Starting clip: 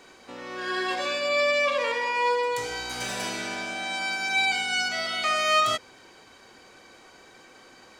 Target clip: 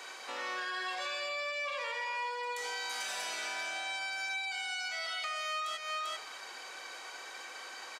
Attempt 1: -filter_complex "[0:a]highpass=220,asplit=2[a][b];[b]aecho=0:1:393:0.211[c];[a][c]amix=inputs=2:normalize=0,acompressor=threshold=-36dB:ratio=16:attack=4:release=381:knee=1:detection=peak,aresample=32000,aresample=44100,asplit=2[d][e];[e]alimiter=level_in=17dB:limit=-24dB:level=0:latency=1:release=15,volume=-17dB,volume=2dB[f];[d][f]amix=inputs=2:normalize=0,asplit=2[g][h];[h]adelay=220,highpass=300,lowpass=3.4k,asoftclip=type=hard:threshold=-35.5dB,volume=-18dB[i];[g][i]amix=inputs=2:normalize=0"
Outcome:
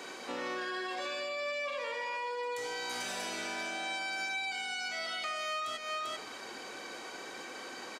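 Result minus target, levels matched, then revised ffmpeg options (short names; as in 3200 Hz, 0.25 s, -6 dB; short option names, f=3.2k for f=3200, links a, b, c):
250 Hz band +12.5 dB
-filter_complex "[0:a]highpass=750,asplit=2[a][b];[b]aecho=0:1:393:0.211[c];[a][c]amix=inputs=2:normalize=0,acompressor=threshold=-36dB:ratio=16:attack=4:release=381:knee=1:detection=peak,aresample=32000,aresample=44100,asplit=2[d][e];[e]alimiter=level_in=17dB:limit=-24dB:level=0:latency=1:release=15,volume=-17dB,volume=2dB[f];[d][f]amix=inputs=2:normalize=0,asplit=2[g][h];[h]adelay=220,highpass=300,lowpass=3.4k,asoftclip=type=hard:threshold=-35.5dB,volume=-18dB[i];[g][i]amix=inputs=2:normalize=0"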